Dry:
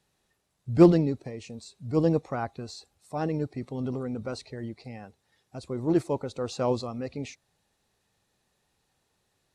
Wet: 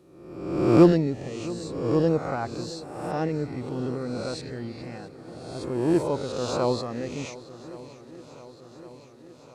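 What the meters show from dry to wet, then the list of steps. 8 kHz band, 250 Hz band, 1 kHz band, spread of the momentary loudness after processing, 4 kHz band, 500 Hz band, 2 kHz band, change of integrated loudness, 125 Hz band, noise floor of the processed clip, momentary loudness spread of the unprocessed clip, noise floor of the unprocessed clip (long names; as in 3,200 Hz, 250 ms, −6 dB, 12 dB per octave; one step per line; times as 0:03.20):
+5.0 dB, +2.0 dB, +3.5 dB, 21 LU, +5.5 dB, +3.0 dB, +5.0 dB, +1.5 dB, +1.5 dB, −49 dBFS, 21 LU, −75 dBFS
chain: peak hold with a rise ahead of every peak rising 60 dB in 1.05 s
feedback echo with a long and a short gap by turns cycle 1,116 ms, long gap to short 1.5 to 1, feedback 62%, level −18 dB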